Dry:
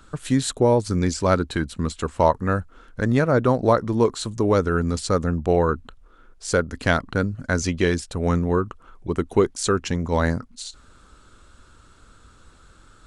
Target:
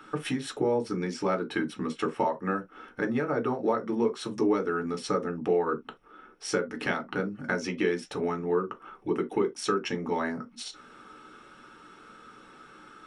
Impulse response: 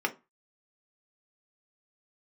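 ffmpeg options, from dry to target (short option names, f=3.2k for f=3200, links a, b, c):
-filter_complex "[0:a]acompressor=threshold=-28dB:ratio=6[a];[1:a]atrim=start_sample=2205,atrim=end_sample=3528[b];[a][b]afir=irnorm=-1:irlink=0,volume=-3.5dB"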